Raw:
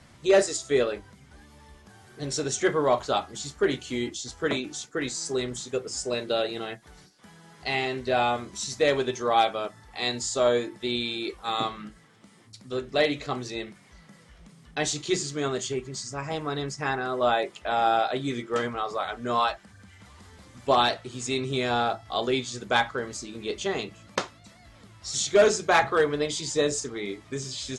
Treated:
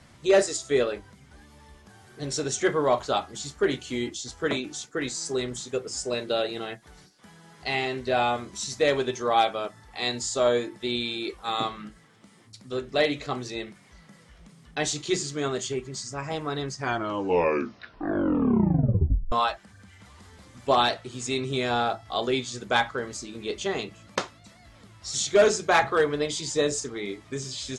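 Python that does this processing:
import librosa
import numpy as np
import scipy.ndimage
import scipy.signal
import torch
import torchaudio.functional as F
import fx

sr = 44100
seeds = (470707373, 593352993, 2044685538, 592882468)

y = fx.edit(x, sr, fx.tape_stop(start_s=16.62, length_s=2.7), tone=tone)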